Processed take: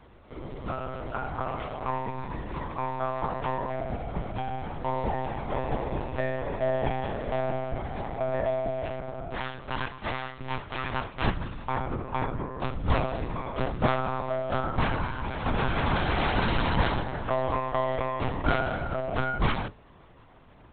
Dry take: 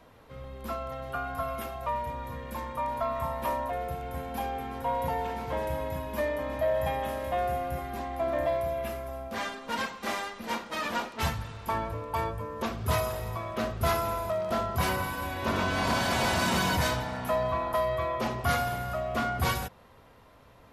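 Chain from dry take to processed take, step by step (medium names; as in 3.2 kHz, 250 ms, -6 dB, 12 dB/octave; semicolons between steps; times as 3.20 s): octave divider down 1 oct, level +3 dB; monotone LPC vocoder at 8 kHz 130 Hz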